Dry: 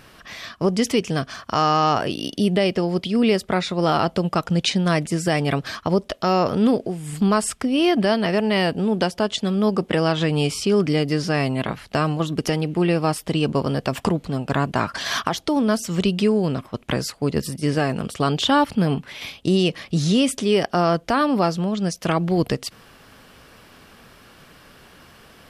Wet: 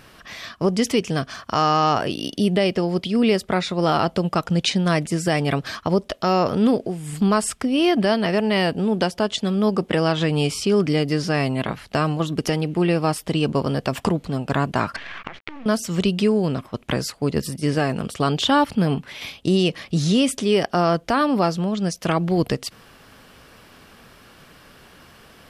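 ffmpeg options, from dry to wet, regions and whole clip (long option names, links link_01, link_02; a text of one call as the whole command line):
ffmpeg -i in.wav -filter_complex "[0:a]asettb=1/sr,asplit=3[link_01][link_02][link_03];[link_01]atrim=end=14.964[link_04];[link_02]atrim=start=14.96:end=15.66,asetpts=PTS-STARTPTS,afade=type=in:duration=0.004:curve=qsin,afade=type=out:start_time=0.696:duration=0.004:curve=qsin,acompressor=threshold=-30dB:ratio=6:attack=3.2:release=140:knee=1:detection=peak,acrusher=bits=5:dc=4:mix=0:aa=0.000001,lowpass=frequency=2300:width_type=q:width=2.4[link_05];[link_03]atrim=start=15.656[link_06];[link_04][link_05]acrossfade=duration=0.004:curve1=hsin:curve2=qsin[link_07];[link_07][link_06]acrossfade=duration=0.004:curve1=qsin:curve2=hsin" out.wav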